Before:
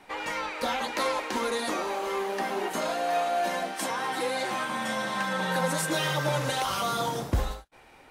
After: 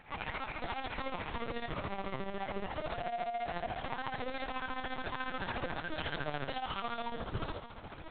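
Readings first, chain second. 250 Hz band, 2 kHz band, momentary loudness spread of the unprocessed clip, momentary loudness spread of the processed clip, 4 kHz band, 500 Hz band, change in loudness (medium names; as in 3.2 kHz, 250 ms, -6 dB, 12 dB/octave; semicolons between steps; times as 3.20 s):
-9.0 dB, -9.0 dB, 4 LU, 2 LU, -11.0 dB, -11.0 dB, -10.0 dB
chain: saturation -32 dBFS, distortion -8 dB; on a send: echo that smears into a reverb 592 ms, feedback 46%, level -11 dB; on the sum: tremolo 14 Hz, depth 70%; LPC vocoder at 8 kHz pitch kept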